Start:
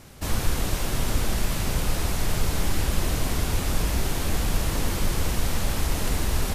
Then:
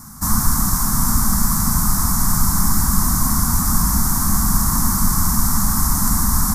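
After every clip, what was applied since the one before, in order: EQ curve 120 Hz 0 dB, 220 Hz +9 dB, 480 Hz -25 dB, 710 Hz -6 dB, 1100 Hz +10 dB, 2000 Hz -8 dB, 2800 Hz -25 dB, 5500 Hz +6 dB, 14000 Hz +12 dB; gain +5.5 dB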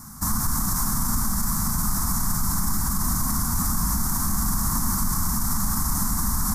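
limiter -11 dBFS, peak gain reduction 8.5 dB; gain -3 dB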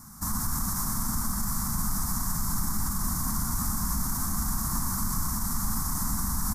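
echo 0.121 s -6 dB; gain -6 dB

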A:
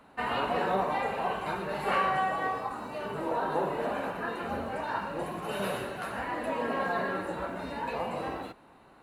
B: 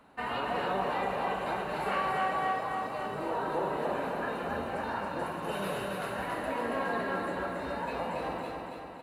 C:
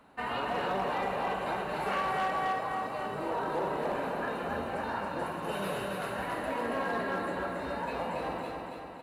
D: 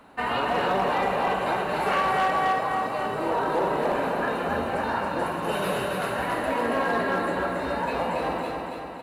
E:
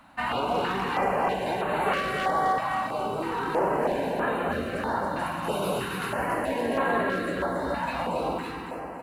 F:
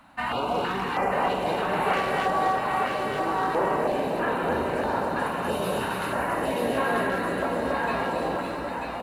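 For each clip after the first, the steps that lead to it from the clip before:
in parallel at -1 dB: limiter -23 dBFS, peak gain reduction 6.5 dB; on the sum: feedback echo 0.278 s, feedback 57%, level -4 dB; gain -8 dB
hard clip -25 dBFS, distortion -22 dB
notches 50/100/150/200 Hz; gain +7.5 dB
stepped notch 3.1 Hz 430–5300 Hz
echo 0.939 s -4 dB

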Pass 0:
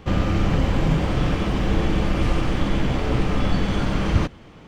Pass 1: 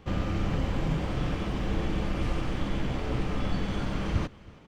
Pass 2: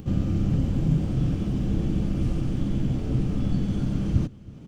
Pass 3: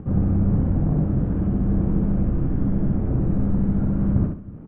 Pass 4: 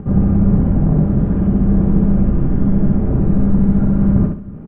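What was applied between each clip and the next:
echo 0.324 s -23 dB; gain -8.5 dB
upward compressor, threshold -37 dBFS; graphic EQ 125/250/500/1000/2000/4000 Hz +7/+5/-4/-10/-10/-5 dB; gain +1.5 dB
in parallel at -6.5 dB: wavefolder -23 dBFS; on the sum: LPF 1600 Hz 24 dB/oct; feedback echo 66 ms, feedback 28%, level -4 dB
comb 5 ms, depth 32%; gain +6.5 dB

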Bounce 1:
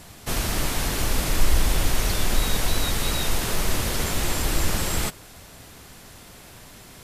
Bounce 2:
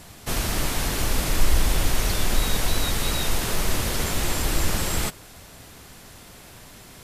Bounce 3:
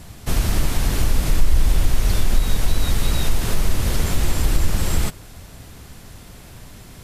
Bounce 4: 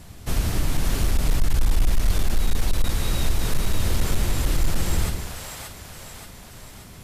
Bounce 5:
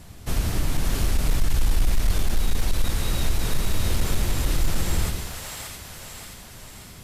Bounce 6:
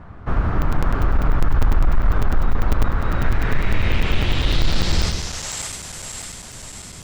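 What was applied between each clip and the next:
nothing audible
low shelf 200 Hz +10.5 dB; compressor 2:1, threshold -13 dBFS, peak gain reduction 7 dB
split-band echo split 520 Hz, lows 0.107 s, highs 0.579 s, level -4.5 dB; hard clip -8.5 dBFS, distortion -15 dB; gain -4 dB
thin delay 0.663 s, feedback 32%, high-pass 1600 Hz, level -6 dB; gain -1 dB
low-pass sweep 1300 Hz -> 7900 Hz, 2.99–5.69; crackling interface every 0.10 s, samples 256, zero, from 0.62; gain +4.5 dB

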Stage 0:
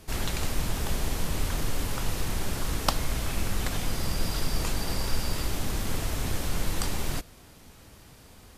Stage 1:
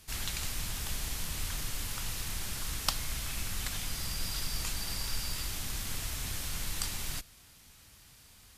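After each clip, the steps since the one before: passive tone stack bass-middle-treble 5-5-5; gain +5.5 dB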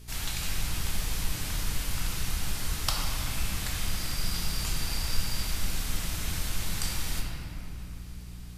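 buzz 60 Hz, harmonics 7, -49 dBFS -8 dB/oct; shoebox room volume 170 m³, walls hard, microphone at 0.56 m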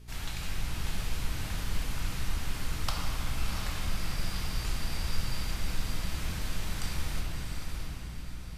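high shelf 4200 Hz -9.5 dB; on a send: diffused feedback echo 0.674 s, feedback 44%, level -5 dB; on the sum: gain -2 dB

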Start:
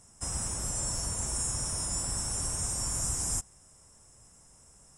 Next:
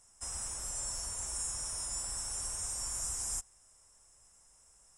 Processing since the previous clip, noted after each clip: bell 160 Hz -14 dB 2.7 oct; gain -4.5 dB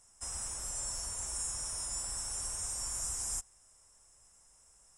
nothing audible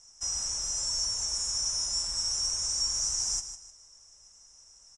synth low-pass 5800 Hz, resonance Q 8.9; feedback echo 0.154 s, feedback 31%, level -11 dB

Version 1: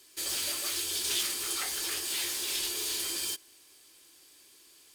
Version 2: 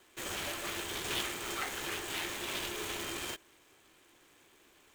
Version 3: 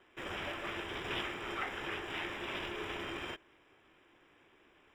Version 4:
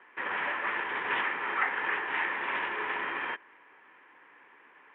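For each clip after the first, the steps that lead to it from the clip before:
median filter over 9 samples; gain +2.5 dB
polynomial smoothing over 25 samples
speaker cabinet 320–2500 Hz, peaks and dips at 350 Hz -8 dB, 640 Hz -7 dB, 960 Hz +8 dB, 1800 Hz +8 dB; gain +7 dB

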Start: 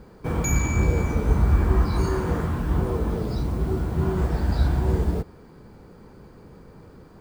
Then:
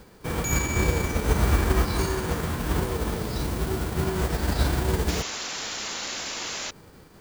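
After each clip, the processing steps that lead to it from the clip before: spectral whitening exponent 0.6; in parallel at -9 dB: sample-and-hold 33×; on the sum: painted sound noise, 5.08–6.71, 200–7400 Hz -28 dBFS; gain -5 dB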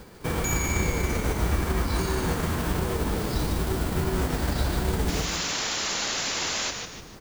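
compressor 3:1, threshold -28 dBFS, peak gain reduction 10 dB; frequency-shifting echo 0.149 s, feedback 41%, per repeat -120 Hz, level -5.5 dB; gain +3.5 dB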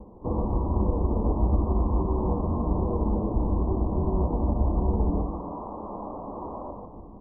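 steep low-pass 1100 Hz 96 dB/oct; on a send at -11 dB: reverb RT60 0.70 s, pre-delay 3 ms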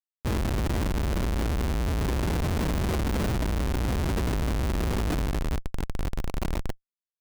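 Schmitt trigger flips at -28.5 dBFS

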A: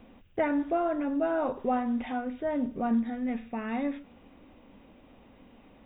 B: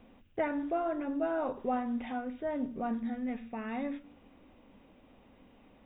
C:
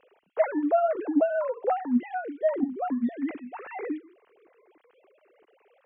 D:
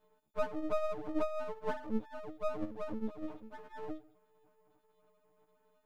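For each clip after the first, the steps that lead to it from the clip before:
de-hum 57.68 Hz, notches 6; gain -4 dB
sine-wave speech; gain +7 dB
frequency quantiser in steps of 6 st; Butterworth band-stop 1900 Hz, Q 0.59; half-wave rectifier; gain -6.5 dB

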